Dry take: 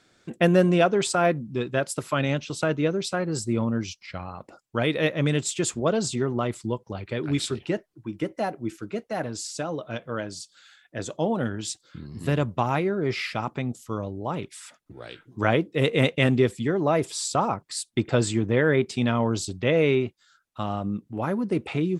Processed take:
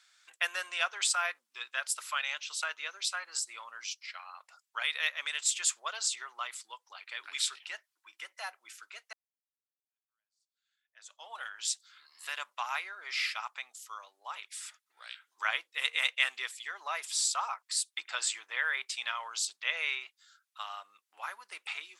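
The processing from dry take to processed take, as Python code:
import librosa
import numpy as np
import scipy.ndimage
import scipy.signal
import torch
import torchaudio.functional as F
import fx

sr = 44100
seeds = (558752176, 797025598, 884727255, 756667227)

y = fx.edit(x, sr, fx.fade_in_span(start_s=9.13, length_s=2.22, curve='exp'), tone=tone)
y = scipy.signal.sosfilt(scipy.signal.butter(4, 1000.0, 'highpass', fs=sr, output='sos'), y)
y = fx.tilt_shelf(y, sr, db=-4.5, hz=1400.0)
y = y * librosa.db_to_amplitude(-3.5)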